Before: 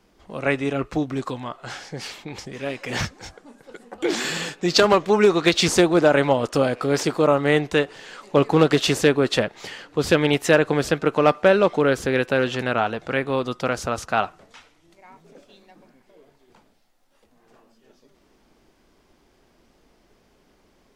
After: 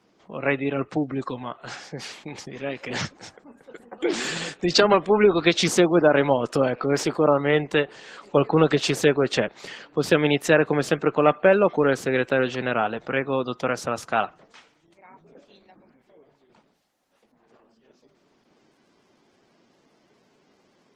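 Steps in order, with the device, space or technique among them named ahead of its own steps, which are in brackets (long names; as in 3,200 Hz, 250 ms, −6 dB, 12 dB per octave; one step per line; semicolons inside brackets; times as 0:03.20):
0:07.37–0:09.29: dynamic equaliser 270 Hz, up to −3 dB, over −30 dBFS, Q 3.9
noise-suppressed video call (high-pass filter 120 Hz 24 dB per octave; gate on every frequency bin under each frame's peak −30 dB strong; level −1 dB; Opus 16 kbit/s 48,000 Hz)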